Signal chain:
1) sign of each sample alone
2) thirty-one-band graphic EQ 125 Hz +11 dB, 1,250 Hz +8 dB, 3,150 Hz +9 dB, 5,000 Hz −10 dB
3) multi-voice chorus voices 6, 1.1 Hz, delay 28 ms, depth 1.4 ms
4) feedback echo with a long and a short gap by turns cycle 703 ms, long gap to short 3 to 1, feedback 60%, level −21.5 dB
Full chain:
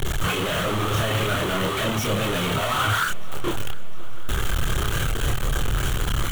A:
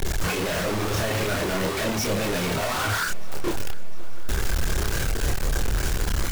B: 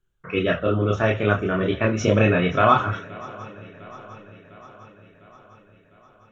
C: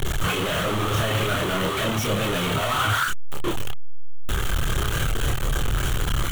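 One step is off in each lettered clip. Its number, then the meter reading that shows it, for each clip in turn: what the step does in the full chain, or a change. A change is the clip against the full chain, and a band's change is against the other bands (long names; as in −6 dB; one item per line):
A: 2, 8 kHz band +3.5 dB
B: 1, change in crest factor +11.0 dB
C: 4, echo-to-direct ratio −17.5 dB to none audible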